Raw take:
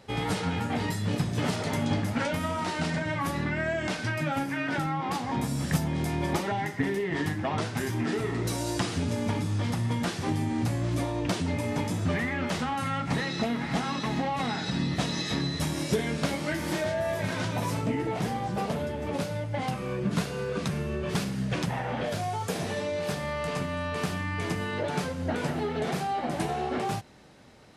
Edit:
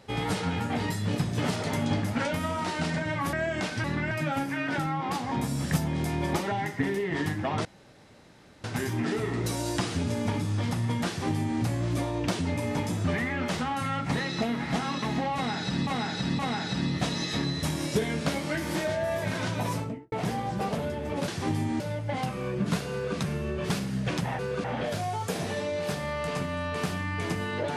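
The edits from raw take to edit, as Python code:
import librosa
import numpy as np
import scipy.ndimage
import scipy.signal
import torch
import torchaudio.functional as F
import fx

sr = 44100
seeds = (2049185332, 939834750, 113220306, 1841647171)

y = fx.studio_fade_out(x, sr, start_s=17.66, length_s=0.43)
y = fx.edit(y, sr, fx.move(start_s=3.33, length_s=0.27, to_s=4.11),
    fx.insert_room_tone(at_s=7.65, length_s=0.99),
    fx.duplicate(start_s=10.09, length_s=0.52, to_s=19.25),
    fx.repeat(start_s=14.36, length_s=0.52, count=3),
    fx.duplicate(start_s=20.37, length_s=0.25, to_s=21.84), tone=tone)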